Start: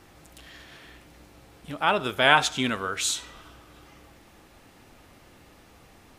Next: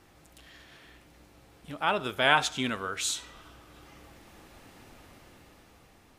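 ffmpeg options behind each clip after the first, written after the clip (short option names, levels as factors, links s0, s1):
-af "dynaudnorm=f=370:g=7:m=2.24,volume=0.531"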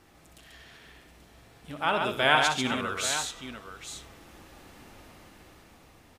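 -af "aecho=1:1:62|138|834:0.376|0.596|0.282"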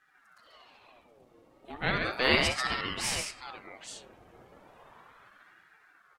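-af "afftdn=nr=14:nf=-52,aeval=exprs='val(0)*sin(2*PI*1000*n/s+1000*0.6/0.35*sin(2*PI*0.35*n/s))':c=same"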